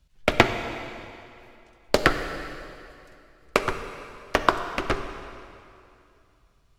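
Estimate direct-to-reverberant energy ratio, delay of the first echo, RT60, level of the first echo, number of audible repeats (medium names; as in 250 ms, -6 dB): 8.0 dB, no echo, 2.7 s, no echo, no echo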